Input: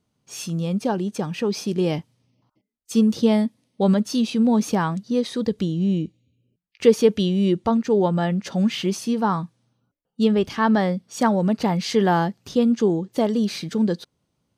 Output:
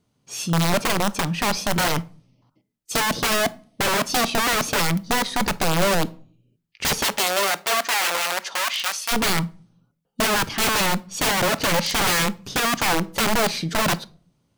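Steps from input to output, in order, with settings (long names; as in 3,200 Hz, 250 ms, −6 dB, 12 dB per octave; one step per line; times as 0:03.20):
wrap-around overflow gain 19 dB
0:07.03–0:09.11: high-pass filter 340 Hz → 1,300 Hz 12 dB per octave
rectangular room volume 400 cubic metres, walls furnished, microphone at 0.3 metres
level +3.5 dB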